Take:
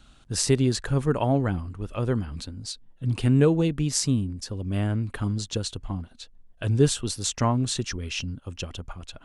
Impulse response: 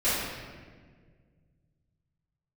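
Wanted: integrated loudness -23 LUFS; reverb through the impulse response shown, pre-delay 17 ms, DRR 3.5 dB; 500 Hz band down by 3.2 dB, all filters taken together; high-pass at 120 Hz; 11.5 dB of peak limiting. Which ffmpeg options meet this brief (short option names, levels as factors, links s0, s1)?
-filter_complex "[0:a]highpass=120,equalizer=f=500:t=o:g=-4,alimiter=limit=0.112:level=0:latency=1,asplit=2[s0][s1];[1:a]atrim=start_sample=2205,adelay=17[s2];[s1][s2]afir=irnorm=-1:irlink=0,volume=0.141[s3];[s0][s3]amix=inputs=2:normalize=0,volume=2"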